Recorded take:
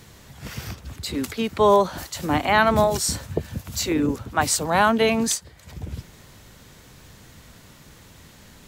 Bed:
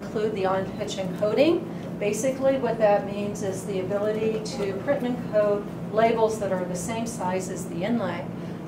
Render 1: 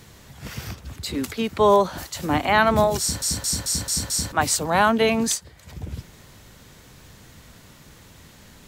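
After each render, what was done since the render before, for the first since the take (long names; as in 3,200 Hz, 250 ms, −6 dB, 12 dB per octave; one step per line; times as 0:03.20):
0:03.00: stutter in place 0.22 s, 6 plays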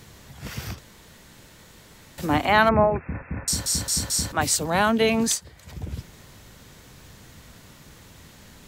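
0:00.79–0:02.18: fill with room tone
0:02.69–0:03.48: linear-phase brick-wall low-pass 2,700 Hz
0:04.37–0:05.14: parametric band 1,000 Hz −4.5 dB 1.4 octaves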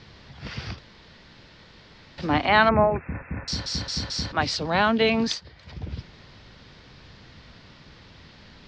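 Chebyshev low-pass filter 5,000 Hz, order 4
parametric band 4,000 Hz +2.5 dB 1.5 octaves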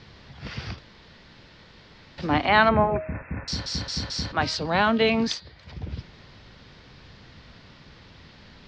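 high-shelf EQ 7,500 Hz −4 dB
hum removal 314.7 Hz, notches 15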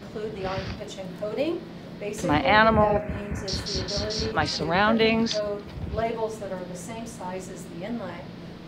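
mix in bed −7 dB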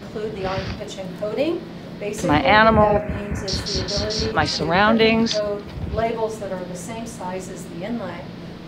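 level +5 dB
brickwall limiter −2 dBFS, peak gain reduction 1.5 dB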